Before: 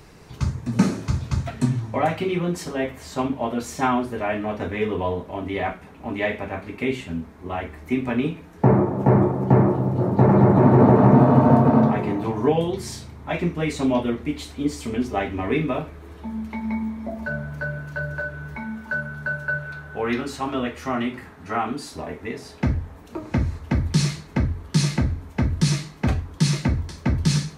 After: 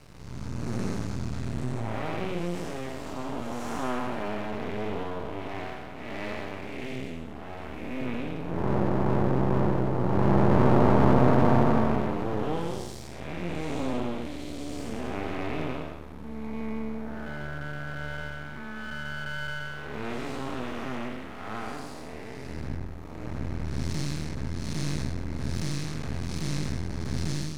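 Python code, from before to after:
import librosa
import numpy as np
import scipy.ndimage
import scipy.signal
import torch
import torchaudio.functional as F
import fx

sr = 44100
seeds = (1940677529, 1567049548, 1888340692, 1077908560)

y = fx.spec_blur(x, sr, span_ms=360.0)
y = np.maximum(y, 0.0)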